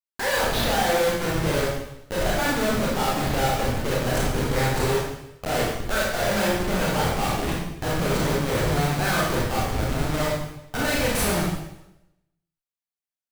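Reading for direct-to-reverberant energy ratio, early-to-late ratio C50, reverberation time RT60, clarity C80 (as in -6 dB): -5.0 dB, -0.5 dB, 0.85 s, 3.5 dB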